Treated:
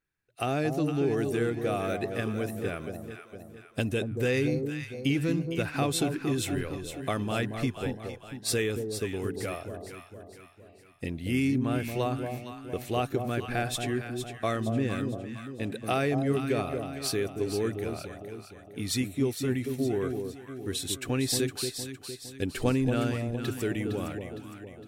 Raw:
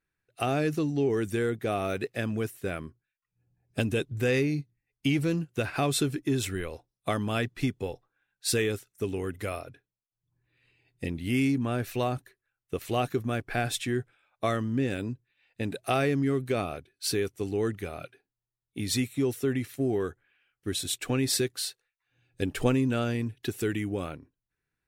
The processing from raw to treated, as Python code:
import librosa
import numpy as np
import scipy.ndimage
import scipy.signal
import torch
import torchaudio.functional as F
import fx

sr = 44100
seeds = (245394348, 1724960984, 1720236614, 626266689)

y = fx.echo_alternate(x, sr, ms=230, hz=840.0, feedback_pct=67, wet_db=-5.0)
y = y * 10.0 ** (-1.5 / 20.0)